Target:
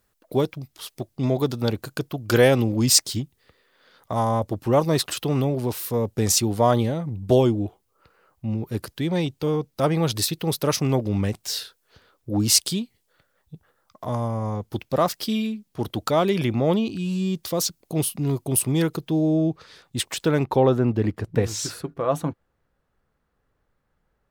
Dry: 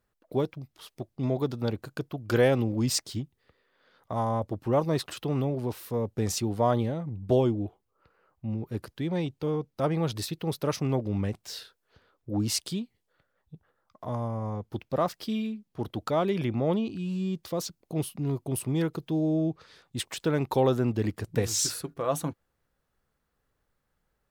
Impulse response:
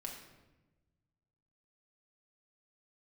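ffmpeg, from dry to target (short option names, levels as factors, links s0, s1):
-af "asetnsamples=n=441:p=0,asendcmd='18.97 highshelf g 3;20.44 highshelf g -11',highshelf=f=3700:g=9,volume=1.88"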